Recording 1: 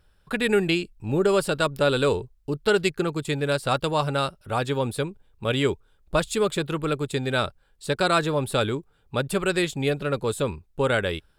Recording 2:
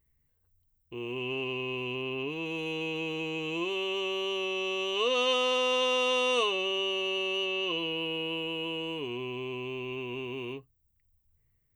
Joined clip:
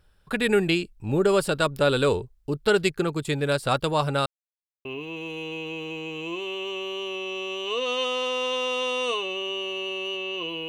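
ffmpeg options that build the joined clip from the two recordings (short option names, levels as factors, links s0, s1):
-filter_complex "[0:a]apad=whole_dur=10.68,atrim=end=10.68,asplit=2[s0][s1];[s0]atrim=end=4.26,asetpts=PTS-STARTPTS,afade=t=out:st=4.256:d=0.004:c=hsin[s2];[s1]atrim=start=4.26:end=4.85,asetpts=PTS-STARTPTS,volume=0[s3];[1:a]atrim=start=2.14:end=7.97,asetpts=PTS-STARTPTS,afade=t=in:d=0.004:c=hsin[s4];[s2][s3][s4]concat=n=3:v=0:a=1"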